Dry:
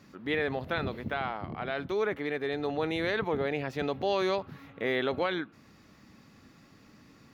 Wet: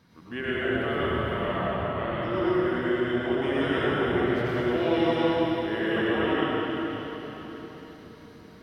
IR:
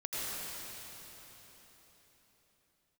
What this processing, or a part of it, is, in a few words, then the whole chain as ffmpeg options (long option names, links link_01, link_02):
slowed and reverbed: -filter_complex "[0:a]asetrate=37485,aresample=44100[link_01];[1:a]atrim=start_sample=2205[link_02];[link_01][link_02]afir=irnorm=-1:irlink=0"